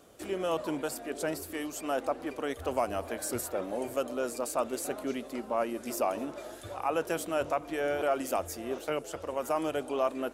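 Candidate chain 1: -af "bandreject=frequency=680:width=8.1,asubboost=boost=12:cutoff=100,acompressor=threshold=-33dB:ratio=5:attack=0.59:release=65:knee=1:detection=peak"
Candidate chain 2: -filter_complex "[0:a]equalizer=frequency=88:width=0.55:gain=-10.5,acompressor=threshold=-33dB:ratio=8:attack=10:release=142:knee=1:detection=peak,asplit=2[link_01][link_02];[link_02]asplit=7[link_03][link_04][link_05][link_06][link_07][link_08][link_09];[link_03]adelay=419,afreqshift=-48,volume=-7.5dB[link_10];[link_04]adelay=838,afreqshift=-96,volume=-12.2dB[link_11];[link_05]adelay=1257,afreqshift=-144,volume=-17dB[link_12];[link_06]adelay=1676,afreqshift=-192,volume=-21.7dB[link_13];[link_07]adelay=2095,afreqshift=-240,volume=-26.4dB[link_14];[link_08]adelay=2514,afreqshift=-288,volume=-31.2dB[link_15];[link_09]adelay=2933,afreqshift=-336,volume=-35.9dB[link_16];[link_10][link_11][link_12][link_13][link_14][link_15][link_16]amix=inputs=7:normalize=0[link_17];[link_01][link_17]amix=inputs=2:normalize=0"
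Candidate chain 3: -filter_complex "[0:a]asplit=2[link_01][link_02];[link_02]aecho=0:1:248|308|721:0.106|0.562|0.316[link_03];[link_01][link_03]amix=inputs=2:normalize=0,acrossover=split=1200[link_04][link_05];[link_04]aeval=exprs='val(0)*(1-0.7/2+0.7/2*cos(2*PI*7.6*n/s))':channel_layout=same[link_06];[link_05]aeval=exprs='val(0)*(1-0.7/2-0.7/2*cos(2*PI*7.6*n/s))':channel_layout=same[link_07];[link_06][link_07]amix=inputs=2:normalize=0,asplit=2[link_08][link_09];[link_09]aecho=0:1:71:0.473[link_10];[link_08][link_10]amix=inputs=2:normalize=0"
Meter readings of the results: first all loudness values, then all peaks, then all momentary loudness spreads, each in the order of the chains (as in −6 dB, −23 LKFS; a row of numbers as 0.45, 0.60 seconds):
−39.5, −37.0, −34.5 LKFS; −26.5, −20.5, −18.5 dBFS; 3, 2, 4 LU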